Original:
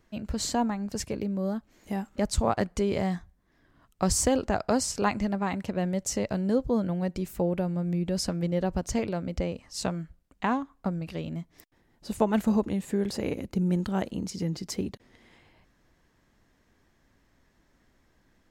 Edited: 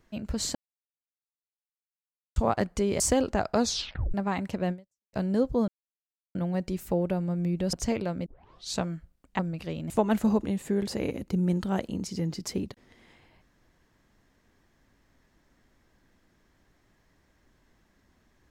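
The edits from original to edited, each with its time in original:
0.55–2.36 s: mute
3.00–4.15 s: delete
4.73 s: tape stop 0.56 s
5.86–6.28 s: fade out exponential
6.83 s: insert silence 0.67 s
8.21–8.80 s: delete
9.33 s: tape start 0.51 s
10.46–10.87 s: delete
11.38–12.13 s: delete

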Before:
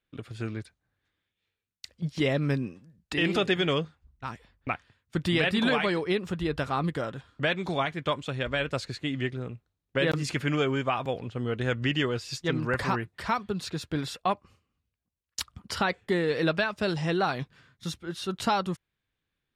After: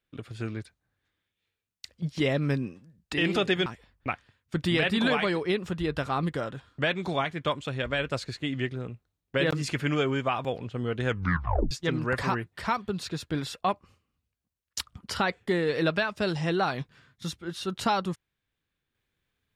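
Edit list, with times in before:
3.66–4.27 s: delete
11.70 s: tape stop 0.62 s

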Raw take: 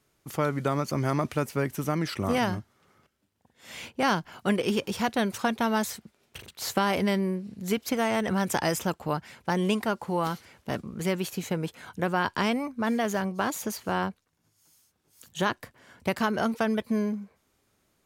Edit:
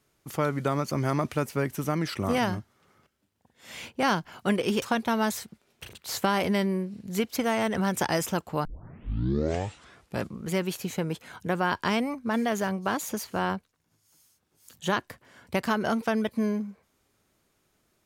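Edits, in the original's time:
4.82–5.35 s: delete
9.18 s: tape start 1.71 s

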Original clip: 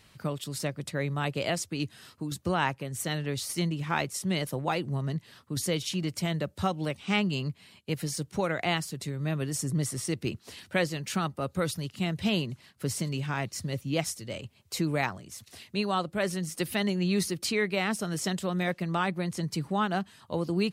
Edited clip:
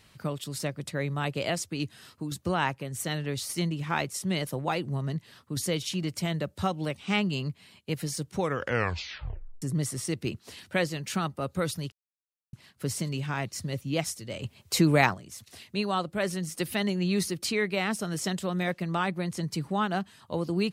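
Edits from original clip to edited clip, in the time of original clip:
8.35 s: tape stop 1.27 s
11.92–12.53 s: mute
14.41–15.14 s: gain +7 dB

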